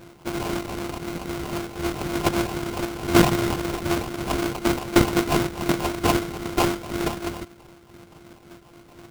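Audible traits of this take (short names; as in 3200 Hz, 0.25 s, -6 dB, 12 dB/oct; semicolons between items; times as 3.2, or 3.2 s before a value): a buzz of ramps at a fixed pitch in blocks of 128 samples; phasing stages 6, 3.9 Hz, lowest notch 500–1700 Hz; aliases and images of a low sample rate 1800 Hz, jitter 20%; noise-modulated level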